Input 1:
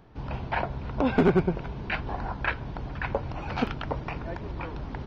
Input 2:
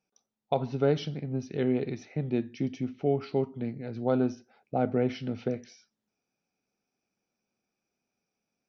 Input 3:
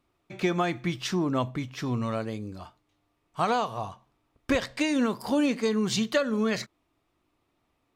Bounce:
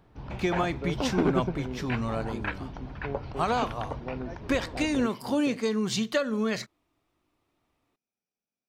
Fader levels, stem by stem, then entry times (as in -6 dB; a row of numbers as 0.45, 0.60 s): -5.0, -11.0, -1.5 dB; 0.00, 0.00, 0.00 s